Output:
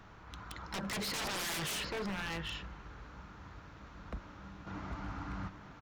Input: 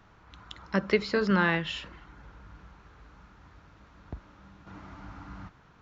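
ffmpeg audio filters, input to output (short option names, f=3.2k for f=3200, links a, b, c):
-filter_complex "[0:a]alimiter=limit=-20dB:level=0:latency=1:release=84,asettb=1/sr,asplit=3[a][b][c];[a]atrim=end=1.074[d];[b]atrim=start=1.07:end=1.83,asetpts=PTS-STARTPTS,afade=t=in:d=0.004:c=qsin,afade=t=out:st=0.756:d=0.004:c=qsin,equalizer=f=960:w=0.42:g=4.5[e];[c]atrim=start=1.826[f];[d][e]acrossfade=d=0.004:c1=hsin:c2=qsin[g];[g][f]acrossfade=d=0.004:c1=qsin:c2=hsin,aecho=1:1:785:0.282,aeval=exprs='0.0168*(abs(mod(val(0)/0.0168+3,4)-2)-1)':c=same,volume=3dB"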